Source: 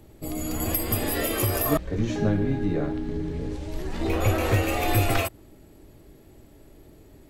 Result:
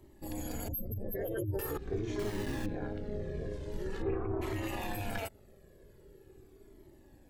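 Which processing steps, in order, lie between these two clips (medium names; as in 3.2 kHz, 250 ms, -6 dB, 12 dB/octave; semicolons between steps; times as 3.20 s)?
0.68–1.59 s: spectral contrast enhancement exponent 3.4; 4.01–4.41 s: low-pass 2.5 kHz -> 1 kHz 24 dB/octave; peak limiter -20 dBFS, peak gain reduction 11 dB; AM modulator 210 Hz, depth 90%; 2.19–2.66 s: word length cut 6-bit, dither none; small resonant body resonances 390/1700 Hz, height 11 dB, ringing for 45 ms; Shepard-style flanger falling 0.44 Hz; trim -1.5 dB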